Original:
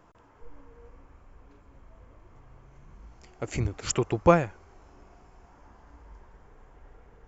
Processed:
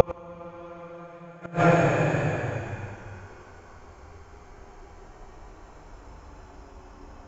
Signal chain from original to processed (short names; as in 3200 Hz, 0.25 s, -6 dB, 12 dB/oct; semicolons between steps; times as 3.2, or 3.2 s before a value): added harmonics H 4 -25 dB, 8 -37 dB, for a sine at -4.5 dBFS; Paulstretch 10×, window 0.25 s, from 4.24; flipped gate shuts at -12 dBFS, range -32 dB; gain +7 dB